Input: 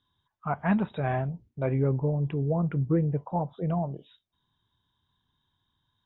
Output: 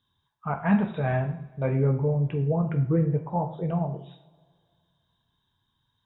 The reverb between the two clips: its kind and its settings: two-slope reverb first 0.51 s, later 2.1 s, from -21 dB, DRR 3.5 dB

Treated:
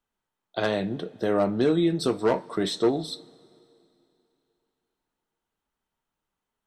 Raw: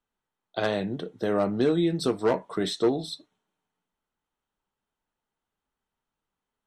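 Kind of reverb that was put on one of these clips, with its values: two-slope reverb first 0.24 s, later 2.9 s, from -20 dB, DRR 13 dB; trim +1 dB

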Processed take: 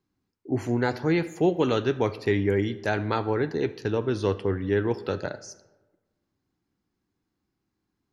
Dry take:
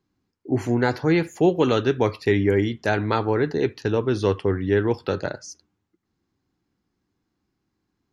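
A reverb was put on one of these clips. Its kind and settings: algorithmic reverb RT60 1.2 s, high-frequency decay 0.55×, pre-delay 15 ms, DRR 16 dB; trim -4 dB

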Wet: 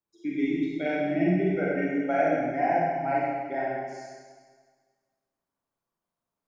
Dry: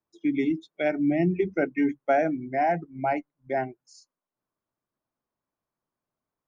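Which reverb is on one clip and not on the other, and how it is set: Schroeder reverb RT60 1.6 s, combs from 33 ms, DRR -6.5 dB; trim -7 dB

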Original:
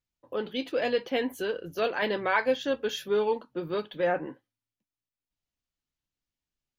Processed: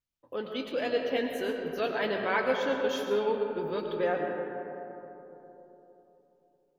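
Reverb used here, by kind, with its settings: algorithmic reverb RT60 3.6 s, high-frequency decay 0.3×, pre-delay 65 ms, DRR 2.5 dB; trim -3.5 dB

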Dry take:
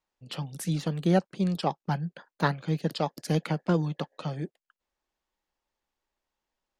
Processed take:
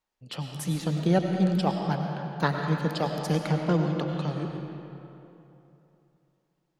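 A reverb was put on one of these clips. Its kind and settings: algorithmic reverb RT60 3 s, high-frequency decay 0.65×, pre-delay 60 ms, DRR 2.5 dB

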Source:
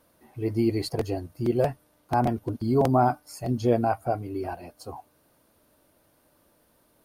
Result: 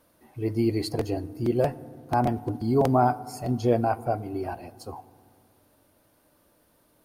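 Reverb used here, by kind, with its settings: FDN reverb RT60 2.1 s, low-frequency decay 1.5×, high-frequency decay 0.4×, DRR 17.5 dB

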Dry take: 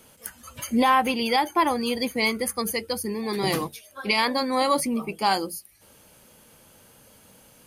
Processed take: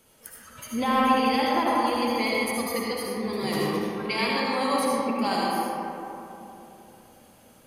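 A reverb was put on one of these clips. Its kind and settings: algorithmic reverb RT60 3.2 s, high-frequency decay 0.4×, pre-delay 35 ms, DRR -5.5 dB; trim -7.5 dB

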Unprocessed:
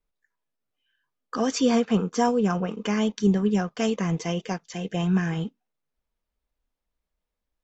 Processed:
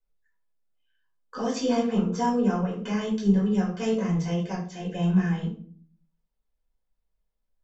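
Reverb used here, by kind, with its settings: simulated room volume 410 m³, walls furnished, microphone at 5 m; trim -12 dB

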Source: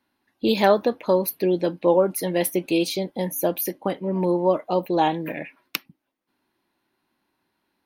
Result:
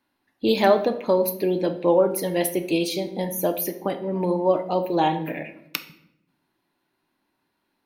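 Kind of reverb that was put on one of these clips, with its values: simulated room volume 200 m³, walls mixed, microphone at 0.38 m; trim -1 dB

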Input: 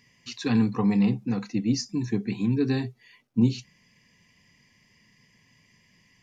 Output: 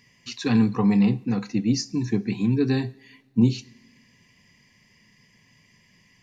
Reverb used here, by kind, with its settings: two-slope reverb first 0.58 s, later 2.3 s, from -18 dB, DRR 17 dB; trim +2.5 dB

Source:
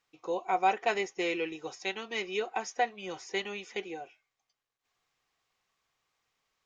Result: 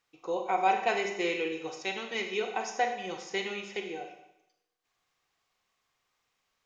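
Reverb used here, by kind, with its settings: Schroeder reverb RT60 0.82 s, combs from 31 ms, DRR 4.5 dB

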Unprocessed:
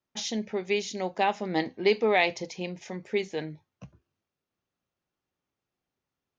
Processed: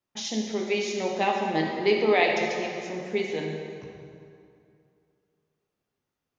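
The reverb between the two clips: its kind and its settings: plate-style reverb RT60 2.5 s, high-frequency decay 0.7×, DRR -0.5 dB; trim -1 dB

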